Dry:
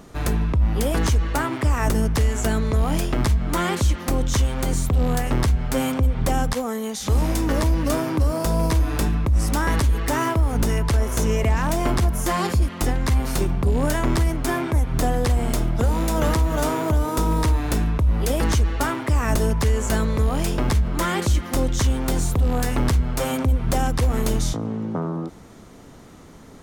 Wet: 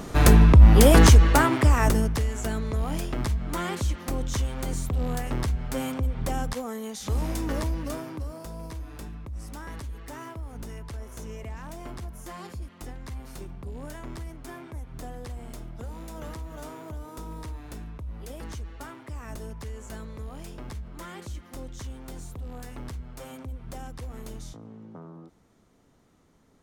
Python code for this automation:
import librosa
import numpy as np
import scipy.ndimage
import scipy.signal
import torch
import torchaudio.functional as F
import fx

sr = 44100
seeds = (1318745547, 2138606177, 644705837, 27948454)

y = fx.gain(x, sr, db=fx.line((1.0, 7.5), (1.86, 0.0), (2.26, -7.5), (7.57, -7.5), (8.53, -18.0)))